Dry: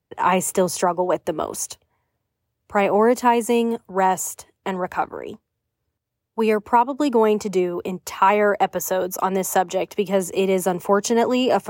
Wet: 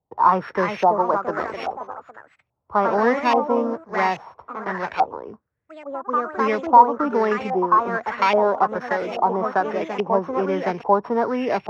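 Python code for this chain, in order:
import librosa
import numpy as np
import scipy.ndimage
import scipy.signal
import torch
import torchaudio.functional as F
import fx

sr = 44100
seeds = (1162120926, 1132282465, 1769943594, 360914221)

y = np.r_[np.sort(x[:len(x) // 8 * 8].reshape(-1, 8), axis=1).ravel(), x[len(x) // 8 * 8:]]
y = fx.echo_pitch(y, sr, ms=395, semitones=2, count=3, db_per_echo=-6.0)
y = fx.filter_lfo_lowpass(y, sr, shape='saw_up', hz=1.2, low_hz=770.0, high_hz=2600.0, q=4.2)
y = y * librosa.db_to_amplitude(-4.5)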